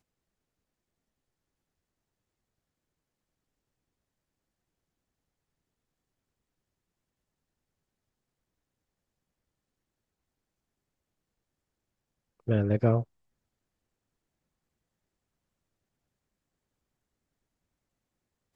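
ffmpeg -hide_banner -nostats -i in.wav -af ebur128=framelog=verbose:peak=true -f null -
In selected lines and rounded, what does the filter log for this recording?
Integrated loudness:
  I:         -27.3 LUFS
  Threshold: -38.3 LUFS
Loudness range:
  LRA:         6.2 LU
  Threshold: -53.8 LUFS
  LRA low:   -39.2 LUFS
  LRA high:  -33.0 LUFS
True peak:
  Peak:      -10.5 dBFS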